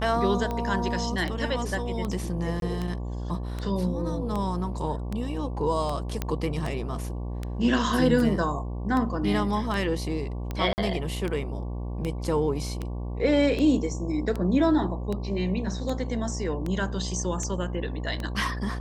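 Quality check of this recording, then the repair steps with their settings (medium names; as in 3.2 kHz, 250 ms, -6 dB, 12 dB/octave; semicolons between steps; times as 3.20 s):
buzz 60 Hz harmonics 19 -32 dBFS
tick 78 rpm -18 dBFS
2.60–2.62 s: dropout 22 ms
6.22 s: pop -13 dBFS
10.73–10.78 s: dropout 49 ms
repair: de-click; de-hum 60 Hz, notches 19; interpolate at 2.60 s, 22 ms; interpolate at 10.73 s, 49 ms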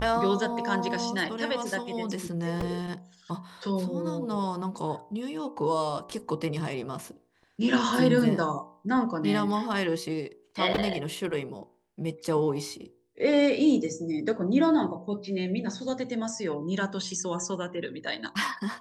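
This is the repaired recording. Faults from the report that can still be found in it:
nothing left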